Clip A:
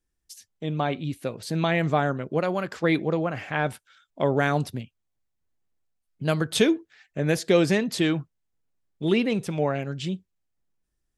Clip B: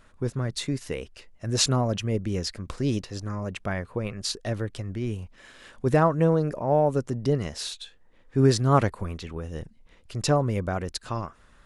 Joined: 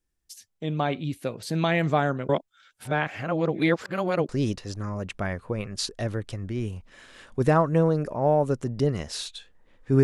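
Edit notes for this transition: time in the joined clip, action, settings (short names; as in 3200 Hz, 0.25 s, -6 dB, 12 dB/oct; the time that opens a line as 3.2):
clip A
2.29–4.29 reverse
4.29 switch to clip B from 2.75 s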